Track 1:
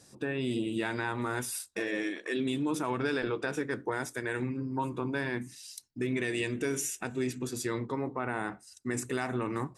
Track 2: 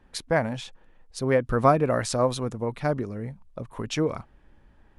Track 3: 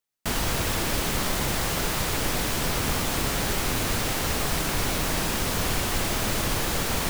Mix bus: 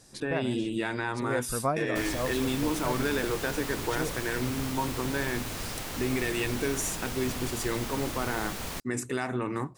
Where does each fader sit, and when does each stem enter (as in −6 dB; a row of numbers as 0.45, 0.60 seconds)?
+1.5, −9.5, −10.0 decibels; 0.00, 0.00, 1.70 seconds